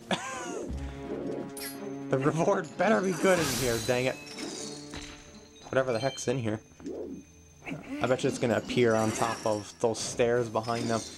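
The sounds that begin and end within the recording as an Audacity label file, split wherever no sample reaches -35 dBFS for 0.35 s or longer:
5.670000	7.180000	sound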